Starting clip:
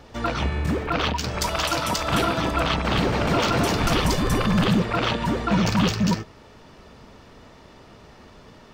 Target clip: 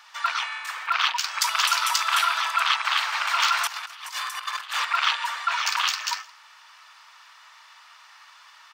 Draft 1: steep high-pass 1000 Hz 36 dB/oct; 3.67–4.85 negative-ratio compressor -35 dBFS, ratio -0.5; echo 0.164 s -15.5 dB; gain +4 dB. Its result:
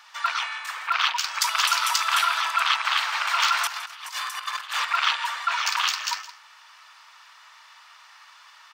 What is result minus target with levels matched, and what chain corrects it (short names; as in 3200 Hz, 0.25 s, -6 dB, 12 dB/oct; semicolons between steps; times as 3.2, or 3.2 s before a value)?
echo-to-direct +9 dB
steep high-pass 1000 Hz 36 dB/oct; 3.67–4.85 negative-ratio compressor -35 dBFS, ratio -0.5; echo 0.164 s -24.5 dB; gain +4 dB